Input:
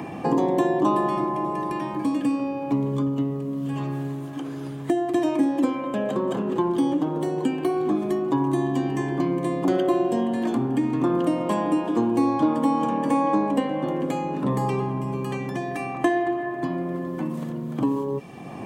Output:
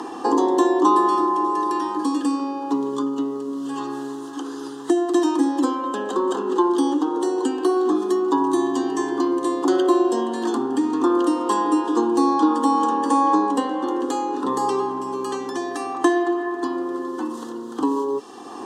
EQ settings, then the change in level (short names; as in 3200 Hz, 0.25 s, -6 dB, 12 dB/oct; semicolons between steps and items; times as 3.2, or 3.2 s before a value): BPF 310–6200 Hz; high shelf 3000 Hz +11 dB; fixed phaser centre 610 Hz, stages 6; +6.5 dB